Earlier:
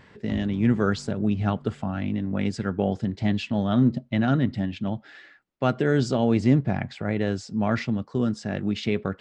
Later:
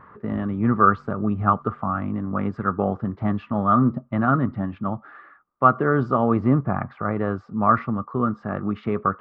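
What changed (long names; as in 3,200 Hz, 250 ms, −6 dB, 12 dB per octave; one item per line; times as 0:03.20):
speech: add low-pass with resonance 1,200 Hz, resonance Q 14
background −6.5 dB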